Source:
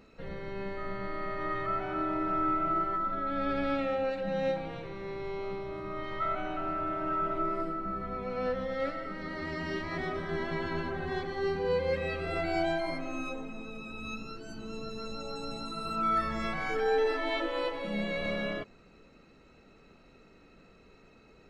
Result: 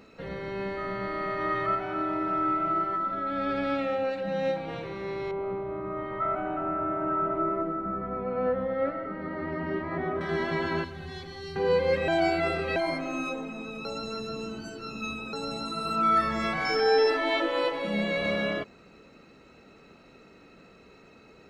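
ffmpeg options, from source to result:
-filter_complex "[0:a]asettb=1/sr,asplit=3[s0][s1][s2];[s0]atrim=end=5.314[s3];[s1]atrim=start=5.31:end=10.21,asetpts=PTS-STARTPTS,afade=t=in:d=0.004:c=qsin,afade=t=out:st=4.896:d=0.004:c=qsin,lowpass=1400[s4];[s2]atrim=start=10.206[s5];[s3][s4]acrossfade=d=0.004:c1=hsin:c2=qsin[s6];[s6][s5]acrossfade=d=0.004:c1=qsin:c2=hsin,asettb=1/sr,asplit=3[s7][s8][s9];[s7]atrim=end=10.844[s10];[s8]atrim=start=10.84:end=11.56,asetpts=PTS-STARTPTS,afade=t=in:d=0.004:c=qsin,afade=t=out:st=0.716:d=0.004:c=qsin,acrossover=split=150|3000[s11][s12][s13];[s12]acompressor=threshold=0.002:ratio=2.5:attack=3.2:release=140:knee=2.83:detection=peak[s14];[s11][s14][s13]amix=inputs=3:normalize=0[s15];[s9]atrim=start=11.556[s16];[s10][s15]acrossfade=d=0.004:c1=hsin:c2=qsin[s17];[s17][s16]acrossfade=d=0.004:c1=qsin:c2=hsin,asettb=1/sr,asplit=3[s18][s19][s20];[s18]atrim=end=16.654[s21];[s19]atrim=start=16.65:end=17.1,asetpts=PTS-STARTPTS,afade=t=in:d=0.004:c=qsin,afade=t=out:st=0.446:d=0.004:c=qsin,aeval=exprs='val(0)+0.0112*sin(2*PI*5300*n/s)':c=same[s22];[s20]atrim=start=17.096[s23];[s21][s22]acrossfade=d=0.004:c1=hsin:c2=qsin[s24];[s24][s23]acrossfade=d=0.004:c1=qsin:c2=hsin,asplit=7[s25][s26][s27][s28][s29][s30][s31];[s25]atrim=end=1.752[s32];[s26]atrim=start=1.748:end=4.682,asetpts=PTS-STARTPTS,volume=0.708[s33];[s27]atrim=start=4.678:end=12.082[s34];[s28]atrim=start=12.078:end=12.762,asetpts=PTS-STARTPTS,areverse[s35];[s29]atrim=start=12.758:end=13.852[s36];[s30]atrim=start=13.848:end=15.332,asetpts=PTS-STARTPTS,areverse[s37];[s31]atrim=start=15.328[s38];[s32][s33]acrossfade=d=0.004:c1=hsin:c2=hsin[s39];[s39][s34]acrossfade=d=0.004:c1=hsin:c2=hsin[s40];[s40][s35]acrossfade=d=0.004:c1=hsin:c2=hsin[s41];[s41][s36]acrossfade=d=0.004:c1=hsin:c2=hsin[s42];[s42][s37]acrossfade=d=0.004:c1=hsin:c2=hsin[s43];[s43][s38]acrossfade=d=0.004:c1=hsin:c2=hsin,highpass=f=110:p=1,volume=1.88"

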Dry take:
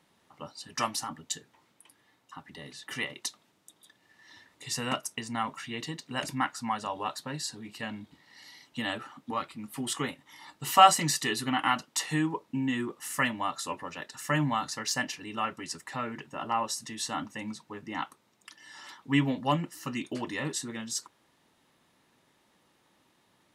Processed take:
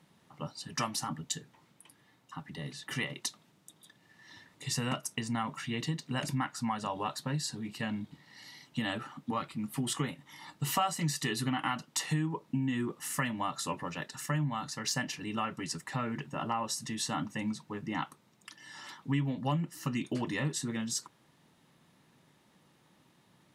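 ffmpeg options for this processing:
-filter_complex "[0:a]asplit=3[s0][s1][s2];[s0]atrim=end=14.262[s3];[s1]atrim=start=14.258:end=14.842,asetpts=PTS-STARTPTS,volume=0.631[s4];[s2]atrim=start=14.838[s5];[s3][s4]acrossfade=d=0.004:c1=hsin:c2=hsin[s6];[s6][s5]acrossfade=d=0.004:c1=hsin:c2=hsin,equalizer=f=150:t=o:w=1.1:g=10,acompressor=threshold=0.0355:ratio=4"

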